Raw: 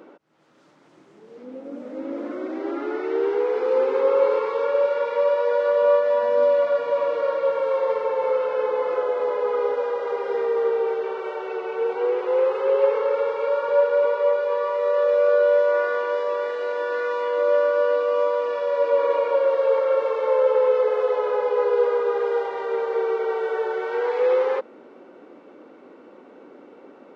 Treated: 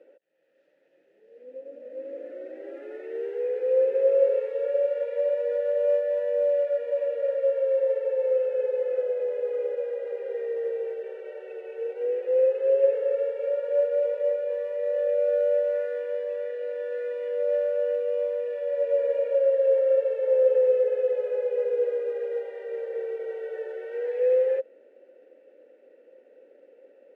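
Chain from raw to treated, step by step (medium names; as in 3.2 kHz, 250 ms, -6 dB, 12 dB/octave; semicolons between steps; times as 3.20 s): CVSD coder 64 kbps; vowel filter e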